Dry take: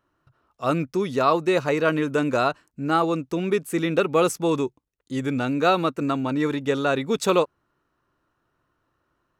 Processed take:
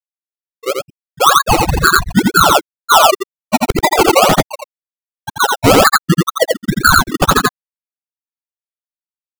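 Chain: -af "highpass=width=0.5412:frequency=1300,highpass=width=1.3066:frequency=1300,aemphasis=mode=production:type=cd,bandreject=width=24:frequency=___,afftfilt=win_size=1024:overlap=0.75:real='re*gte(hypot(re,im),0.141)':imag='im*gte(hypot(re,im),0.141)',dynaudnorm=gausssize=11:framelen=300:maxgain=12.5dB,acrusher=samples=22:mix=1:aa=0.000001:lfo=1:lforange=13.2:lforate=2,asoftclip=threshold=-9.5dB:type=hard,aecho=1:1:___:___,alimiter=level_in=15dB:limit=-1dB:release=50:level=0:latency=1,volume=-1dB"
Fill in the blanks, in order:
5000, 85, 0.668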